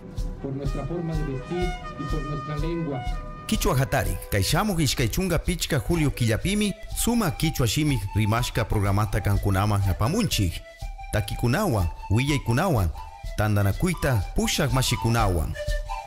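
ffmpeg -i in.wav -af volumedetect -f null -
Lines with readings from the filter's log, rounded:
mean_volume: -24.3 dB
max_volume: -12.1 dB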